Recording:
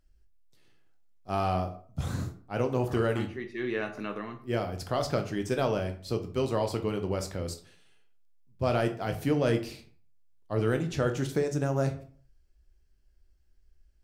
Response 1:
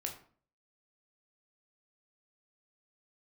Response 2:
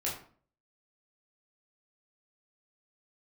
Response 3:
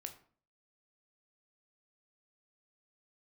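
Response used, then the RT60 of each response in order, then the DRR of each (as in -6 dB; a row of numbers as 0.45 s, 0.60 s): 3; 0.45 s, 0.45 s, 0.45 s; 1.5 dB, -6.0 dB, 5.5 dB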